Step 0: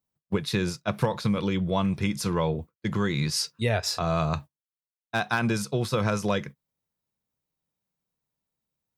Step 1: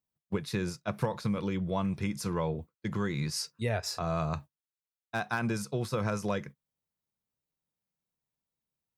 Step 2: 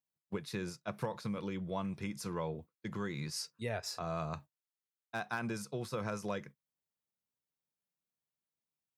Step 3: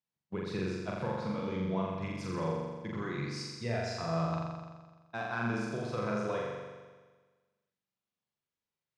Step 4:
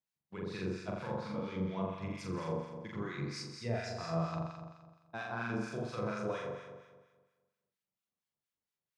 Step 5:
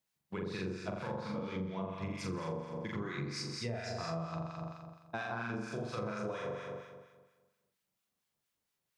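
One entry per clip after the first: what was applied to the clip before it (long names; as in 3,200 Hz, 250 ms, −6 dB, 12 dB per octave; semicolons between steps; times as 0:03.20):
dynamic equaliser 3,400 Hz, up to −6 dB, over −46 dBFS, Q 1.8; level −5.5 dB
high-pass filter 140 Hz 6 dB per octave; level −5.5 dB
high-frequency loss of the air 110 metres; flutter between parallel walls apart 7.3 metres, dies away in 1.4 s
two-band tremolo in antiphase 4.3 Hz, depth 70%, crossover 1,100 Hz
downward compressor 6 to 1, threshold −43 dBFS, peak gain reduction 13.5 dB; level +7.5 dB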